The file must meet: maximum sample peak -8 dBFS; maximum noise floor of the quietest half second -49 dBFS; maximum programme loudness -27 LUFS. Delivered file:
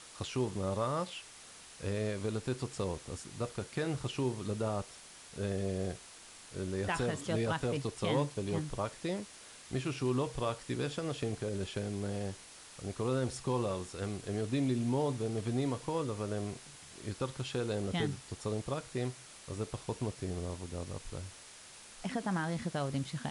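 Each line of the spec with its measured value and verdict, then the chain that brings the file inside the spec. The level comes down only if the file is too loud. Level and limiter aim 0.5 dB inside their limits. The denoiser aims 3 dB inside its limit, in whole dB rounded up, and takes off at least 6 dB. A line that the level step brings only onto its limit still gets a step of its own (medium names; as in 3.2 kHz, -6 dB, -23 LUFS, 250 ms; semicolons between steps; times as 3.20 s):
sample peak -18.5 dBFS: pass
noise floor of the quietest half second -53 dBFS: pass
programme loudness -36.5 LUFS: pass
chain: none needed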